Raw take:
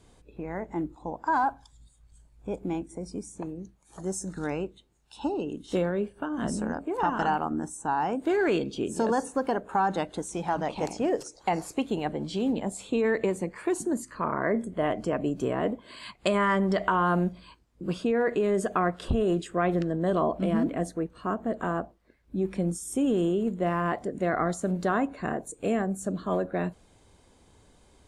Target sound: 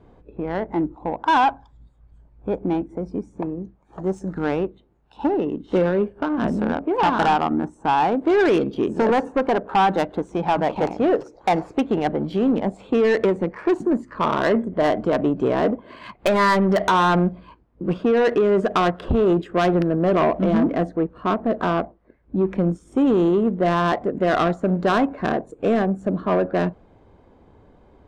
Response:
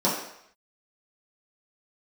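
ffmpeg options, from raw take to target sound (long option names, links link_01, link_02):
-af "lowshelf=frequency=180:gain=-5.5,adynamicsmooth=sensitivity=2.5:basefreq=1300,aeval=exprs='0.266*(cos(1*acos(clip(val(0)/0.266,-1,1)))-cos(1*PI/2))+0.0944*(cos(5*acos(clip(val(0)/0.266,-1,1)))-cos(5*PI/2))':channel_layout=same,volume=2dB"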